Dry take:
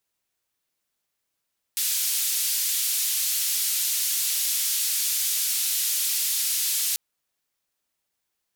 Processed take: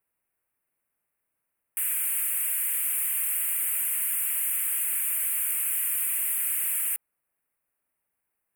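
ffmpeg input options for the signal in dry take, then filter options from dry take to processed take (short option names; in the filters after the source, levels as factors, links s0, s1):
-f lavfi -i "anoisesrc=c=white:d=5.19:r=44100:seed=1,highpass=f=3500,lowpass=f=16000,volume=-17.6dB"
-af "asuperstop=centerf=4900:order=8:qfactor=0.78"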